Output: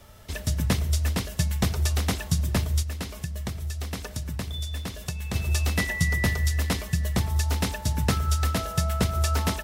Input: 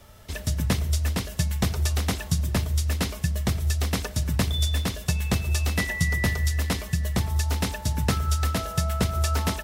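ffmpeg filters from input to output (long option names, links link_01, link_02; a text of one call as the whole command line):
ffmpeg -i in.wav -filter_complex "[0:a]asplit=3[link_01][link_02][link_03];[link_01]afade=type=out:start_time=2.82:duration=0.02[link_04];[link_02]acompressor=threshold=-31dB:ratio=3,afade=type=in:start_time=2.82:duration=0.02,afade=type=out:start_time=5.34:duration=0.02[link_05];[link_03]afade=type=in:start_time=5.34:duration=0.02[link_06];[link_04][link_05][link_06]amix=inputs=3:normalize=0" out.wav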